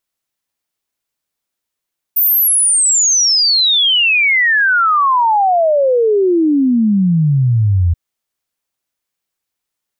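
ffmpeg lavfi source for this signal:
ffmpeg -f lavfi -i "aevalsrc='0.355*clip(min(t,5.78-t)/0.01,0,1)*sin(2*PI*15000*5.78/log(82/15000)*(exp(log(82/15000)*t/5.78)-1))':duration=5.78:sample_rate=44100" out.wav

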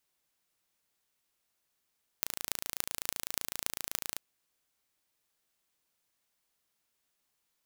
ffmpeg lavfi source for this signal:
ffmpeg -f lavfi -i "aevalsrc='0.794*eq(mod(n,1581),0)*(0.5+0.5*eq(mod(n,12648),0))':duration=1.97:sample_rate=44100" out.wav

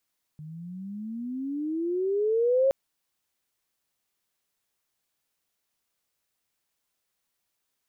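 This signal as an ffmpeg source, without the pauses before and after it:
ffmpeg -f lavfi -i "aevalsrc='pow(10,(-18+20.5*(t/2.32-1))/20)*sin(2*PI*150*2.32/(22.5*log(2)/12)*(exp(22.5*log(2)/12*t/2.32)-1))':duration=2.32:sample_rate=44100" out.wav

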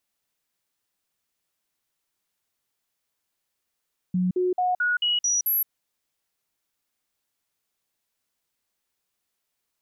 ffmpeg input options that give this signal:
ffmpeg -f lavfi -i "aevalsrc='0.1*clip(min(mod(t,0.22),0.17-mod(t,0.22))/0.005,0,1)*sin(2*PI*182*pow(2,floor(t/0.22)/1)*mod(t,0.22))':duration=1.54:sample_rate=44100" out.wav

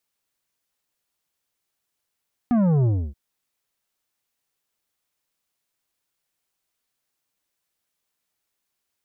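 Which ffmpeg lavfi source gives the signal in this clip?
ffmpeg -f lavfi -i "aevalsrc='0.141*clip((0.63-t)/0.29,0,1)*tanh(2.99*sin(2*PI*250*0.63/log(65/250)*(exp(log(65/250)*t/0.63)-1)))/tanh(2.99)':duration=0.63:sample_rate=44100" out.wav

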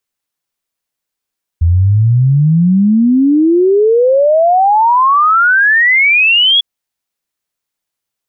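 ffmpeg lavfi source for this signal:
ffmpeg -f lavfi -i "aevalsrc='0.501*clip(min(t,5-t)/0.01,0,1)*sin(2*PI*81*5/log(3400/81)*(exp(log(3400/81)*t/5)-1))':duration=5:sample_rate=44100" out.wav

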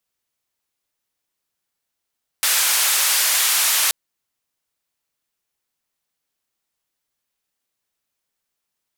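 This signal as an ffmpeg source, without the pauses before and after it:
ffmpeg -f lavfi -i "anoisesrc=color=white:duration=1.48:sample_rate=44100:seed=1,highpass=frequency=1000,lowpass=frequency=14000,volume=-10.8dB" out.wav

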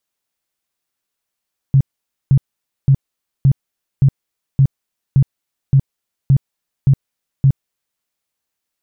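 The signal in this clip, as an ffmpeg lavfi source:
ffmpeg -f lavfi -i "aevalsrc='0.473*sin(2*PI*136*mod(t,0.57))*lt(mod(t,0.57),9/136)':duration=6.27:sample_rate=44100" out.wav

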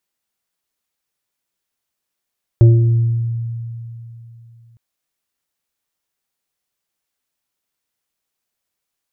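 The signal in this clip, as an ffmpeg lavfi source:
ffmpeg -f lavfi -i "aevalsrc='0.562*pow(10,-3*t/3.19)*sin(2*PI*116*t+0.81*pow(10,-3*t/1.38)*sin(2*PI*1.98*116*t))':duration=2.16:sample_rate=44100" out.wav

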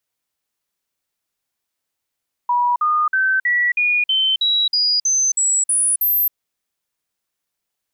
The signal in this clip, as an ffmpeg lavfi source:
ffmpeg -f lavfi -i "aevalsrc='0.2*clip(min(mod(t,0.32),0.27-mod(t,0.32))/0.005,0,1)*sin(2*PI*971*pow(2,floor(t/0.32)/3)*mod(t,0.32))':duration=3.84:sample_rate=44100" out.wav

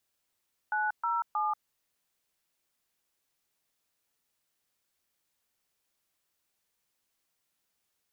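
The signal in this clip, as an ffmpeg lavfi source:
ffmpeg -f lavfi -i "aevalsrc='0.0335*clip(min(mod(t,0.315),0.186-mod(t,0.315))/0.002,0,1)*(eq(floor(t/0.315),0)*(sin(2*PI*852*mod(t,0.315))+sin(2*PI*1477*mod(t,0.315)))+eq(floor(t/0.315),1)*(sin(2*PI*941*mod(t,0.315))+sin(2*PI*1336*mod(t,0.315)))+eq(floor(t/0.315),2)*(sin(2*PI*852*mod(t,0.315))+sin(2*PI*1209*mod(t,0.315))))':duration=0.945:sample_rate=44100" out.wav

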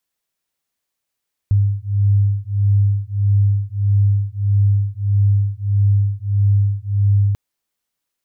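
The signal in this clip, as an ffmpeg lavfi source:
ffmpeg -f lavfi -i "aevalsrc='0.158*(sin(2*PI*100*t)+sin(2*PI*101.6*t))':duration=5.84:sample_rate=44100" out.wav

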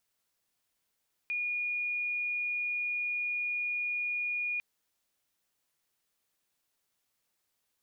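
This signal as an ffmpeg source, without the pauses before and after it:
ffmpeg -f lavfi -i "aevalsrc='0.0316*sin(2*PI*2440*t)':duration=3.3:sample_rate=44100" out.wav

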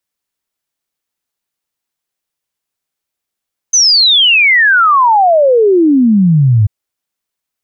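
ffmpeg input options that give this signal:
ffmpeg -f lavfi -i "aevalsrc='0.562*clip(min(t,2.94-t)/0.01,0,1)*sin(2*PI*6300*2.94/log(100/6300)*(exp(log(100/6300)*t/2.94)-1))':duration=2.94:sample_rate=44100" out.wav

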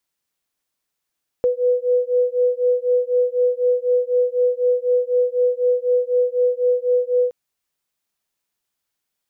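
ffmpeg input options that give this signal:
ffmpeg -f lavfi -i "aevalsrc='0.119*(sin(2*PI*493*t)+sin(2*PI*497*t))':duration=5.87:sample_rate=44100" out.wav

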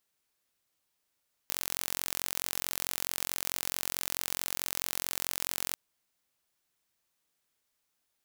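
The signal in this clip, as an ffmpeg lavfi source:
ffmpeg -f lavfi -i "aevalsrc='0.531*eq(mod(n,989),0)':duration=4.24:sample_rate=44100" out.wav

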